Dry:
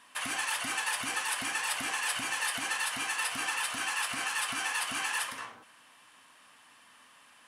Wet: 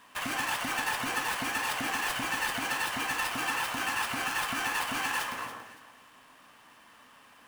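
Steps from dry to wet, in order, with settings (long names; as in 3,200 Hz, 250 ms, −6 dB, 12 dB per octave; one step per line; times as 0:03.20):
gap after every zero crossing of 0.052 ms
tilt shelving filter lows +3.5 dB, about 1,200 Hz
delay that swaps between a low-pass and a high-pass 141 ms, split 1,600 Hz, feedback 52%, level −7 dB
level +3 dB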